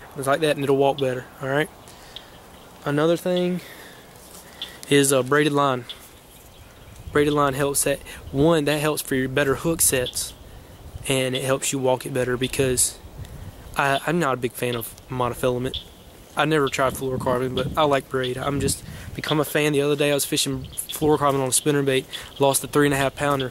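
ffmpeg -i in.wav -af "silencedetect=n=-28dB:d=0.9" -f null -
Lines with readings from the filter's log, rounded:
silence_start: 5.92
silence_end: 7.08 | silence_duration: 1.16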